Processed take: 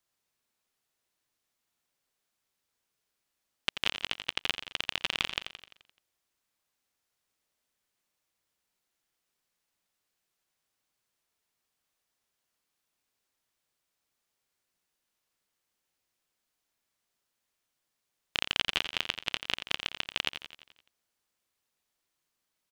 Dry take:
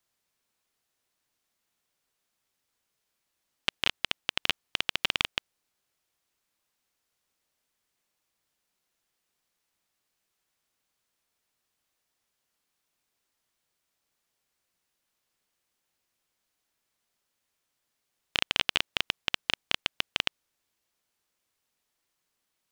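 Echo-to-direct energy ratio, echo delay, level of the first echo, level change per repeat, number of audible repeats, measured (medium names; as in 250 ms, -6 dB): -8.0 dB, 86 ms, -9.5 dB, -5.0 dB, 6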